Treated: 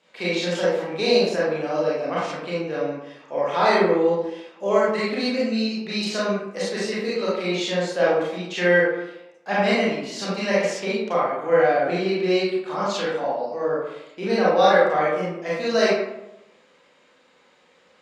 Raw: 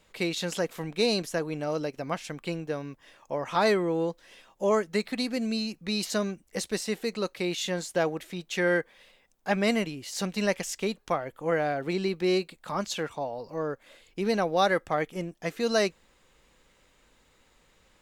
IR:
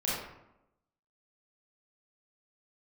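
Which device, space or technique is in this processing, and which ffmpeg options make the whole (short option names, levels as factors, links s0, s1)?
supermarket ceiling speaker: -filter_complex "[0:a]highpass=270,lowpass=5600[s0];[1:a]atrim=start_sample=2205[s1];[s0][s1]afir=irnorm=-1:irlink=0"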